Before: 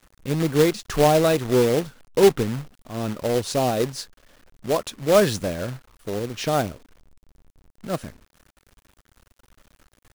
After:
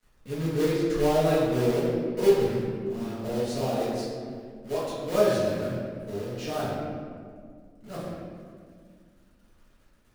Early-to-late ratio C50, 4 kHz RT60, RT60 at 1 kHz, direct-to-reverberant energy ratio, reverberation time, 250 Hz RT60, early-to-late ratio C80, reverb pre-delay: -1.5 dB, 1.1 s, 1.7 s, -10.5 dB, 2.0 s, 2.8 s, 0.5 dB, 4 ms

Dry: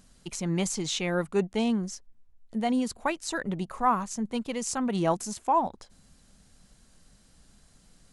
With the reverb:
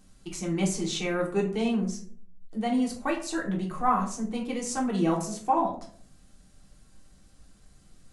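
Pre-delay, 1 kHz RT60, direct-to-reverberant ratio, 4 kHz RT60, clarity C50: 3 ms, 0.45 s, -3.0 dB, 0.30 s, 8.5 dB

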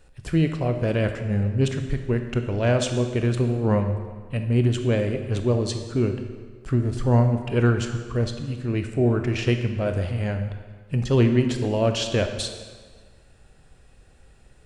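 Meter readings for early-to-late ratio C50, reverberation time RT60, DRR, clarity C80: 7.5 dB, 1.6 s, 6.0 dB, 9.0 dB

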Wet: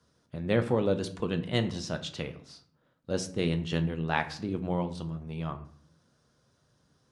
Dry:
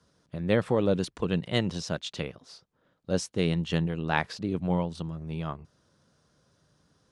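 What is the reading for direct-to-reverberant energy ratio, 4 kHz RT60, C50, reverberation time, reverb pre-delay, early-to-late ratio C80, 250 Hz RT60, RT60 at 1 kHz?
7.0 dB, 0.35 s, 13.5 dB, 0.55 s, 8 ms, 17.0 dB, 0.80 s, 0.55 s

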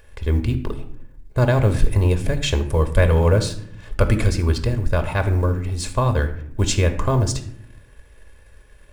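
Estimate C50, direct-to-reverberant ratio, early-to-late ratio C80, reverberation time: 11.5 dB, 6.5 dB, 14.5 dB, 0.70 s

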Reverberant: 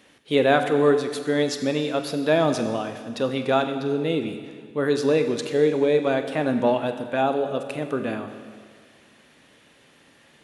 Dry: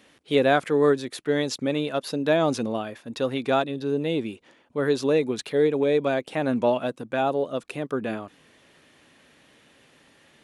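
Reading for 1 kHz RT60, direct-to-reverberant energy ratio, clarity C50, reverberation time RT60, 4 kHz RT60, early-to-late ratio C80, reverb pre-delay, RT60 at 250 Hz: 1.8 s, 7.0 dB, 9.0 dB, 1.8 s, 1.8 s, 10.0 dB, 23 ms, 1.8 s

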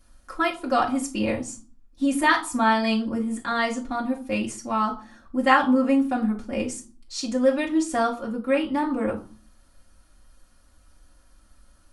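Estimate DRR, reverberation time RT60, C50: -3.5 dB, 0.45 s, 13.0 dB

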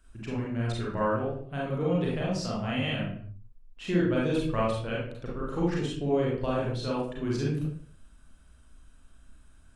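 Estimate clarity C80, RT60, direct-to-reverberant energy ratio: 6.5 dB, 0.60 s, -5.5 dB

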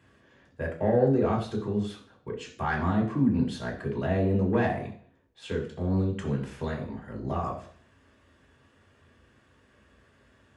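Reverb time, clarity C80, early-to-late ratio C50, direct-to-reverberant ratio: 0.50 s, 12.5 dB, 9.0 dB, -3.0 dB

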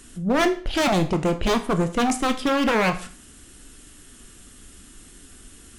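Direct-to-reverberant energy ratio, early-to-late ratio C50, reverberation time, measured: 7.5 dB, 13.5 dB, 0.45 s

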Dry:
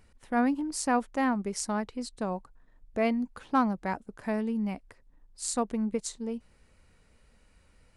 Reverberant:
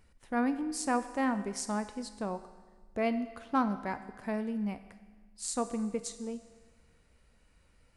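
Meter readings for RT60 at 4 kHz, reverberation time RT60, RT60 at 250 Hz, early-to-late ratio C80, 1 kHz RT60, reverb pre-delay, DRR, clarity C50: 1.4 s, 1.4 s, 1.4 s, 13.5 dB, 1.4 s, 6 ms, 10.0 dB, 12.0 dB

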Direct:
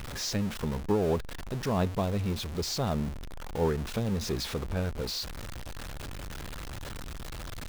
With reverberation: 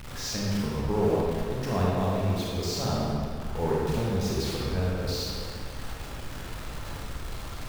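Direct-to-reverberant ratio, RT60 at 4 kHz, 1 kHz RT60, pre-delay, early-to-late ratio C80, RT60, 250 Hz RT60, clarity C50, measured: -5.5 dB, 1.5 s, 2.3 s, 25 ms, -0.5 dB, 2.3 s, 2.3 s, -3.0 dB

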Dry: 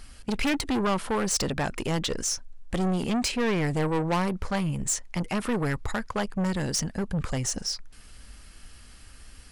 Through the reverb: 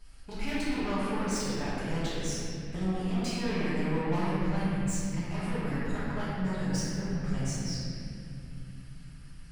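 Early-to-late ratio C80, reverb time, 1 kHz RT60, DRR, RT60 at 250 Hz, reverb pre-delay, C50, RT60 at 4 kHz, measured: -2.5 dB, 2.6 s, 2.4 s, -12.0 dB, 4.4 s, 5 ms, -5.0 dB, 2.0 s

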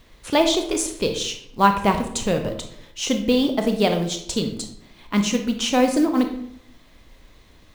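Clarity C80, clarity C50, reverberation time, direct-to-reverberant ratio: 11.5 dB, 8.5 dB, 0.70 s, 5.5 dB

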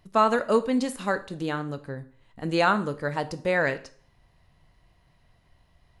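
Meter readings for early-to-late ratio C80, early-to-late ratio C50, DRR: 19.5 dB, 16.5 dB, 11.5 dB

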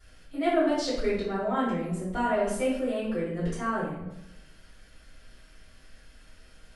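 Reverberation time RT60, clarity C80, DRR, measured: 0.95 s, 5.0 dB, -11.0 dB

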